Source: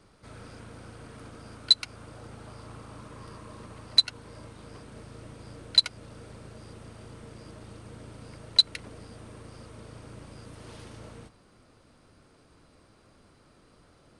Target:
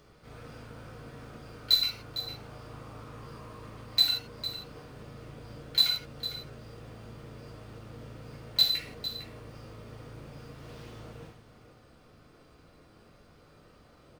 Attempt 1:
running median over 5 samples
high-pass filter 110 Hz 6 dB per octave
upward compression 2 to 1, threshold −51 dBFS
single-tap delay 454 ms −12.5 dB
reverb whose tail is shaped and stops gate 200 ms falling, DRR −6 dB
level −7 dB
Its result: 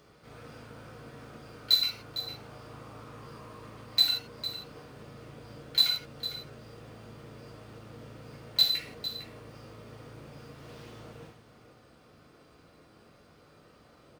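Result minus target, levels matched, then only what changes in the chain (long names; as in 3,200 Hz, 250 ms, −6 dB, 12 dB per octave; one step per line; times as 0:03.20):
125 Hz band −2.5 dB
remove: high-pass filter 110 Hz 6 dB per octave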